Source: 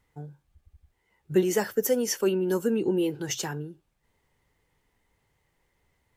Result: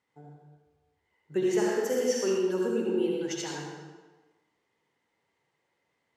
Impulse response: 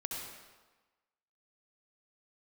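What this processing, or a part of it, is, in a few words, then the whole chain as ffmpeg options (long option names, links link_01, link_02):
supermarket ceiling speaker: -filter_complex "[0:a]highpass=220,lowpass=6900[link_01];[1:a]atrim=start_sample=2205[link_02];[link_01][link_02]afir=irnorm=-1:irlink=0,asettb=1/sr,asplit=3[link_03][link_04][link_05];[link_03]atrim=end=1.424[link_06];[link_04]atrim=start=1.42:end=2.38,asetpts=PTS-STARTPTS,afade=type=in:duration=0.004:curve=qsin,afade=type=out:start_time=0.956:duration=0.004:curve=qsin,asplit=2[link_07][link_08];[link_08]adelay=47,volume=-5.5dB[link_09];[link_07][link_09]amix=inputs=2:normalize=0,atrim=end_sample=42336[link_10];[link_05]atrim=start=2.376[link_11];[link_06][link_10]acrossfade=duration=0.004:curve1=hsin:curve2=qsin[link_12];[link_12][link_11]acrossfade=duration=0.004:curve1=qsin:curve2=hsin,volume=-3.5dB"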